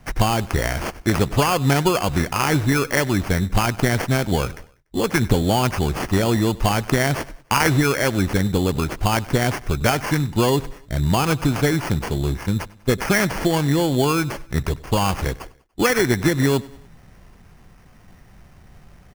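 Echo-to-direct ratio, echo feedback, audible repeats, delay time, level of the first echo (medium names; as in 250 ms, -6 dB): -20.0 dB, 47%, 3, 97 ms, -21.0 dB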